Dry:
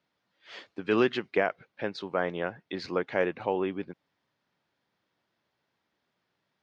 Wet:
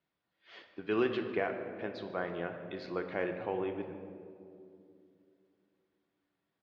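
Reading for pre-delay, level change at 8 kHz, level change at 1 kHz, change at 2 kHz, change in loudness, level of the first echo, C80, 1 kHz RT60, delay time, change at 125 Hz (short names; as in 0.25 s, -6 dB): 3 ms, n/a, -6.5 dB, -7.0 dB, -6.0 dB, -17.0 dB, 8.0 dB, 2.2 s, 0.146 s, -4.5 dB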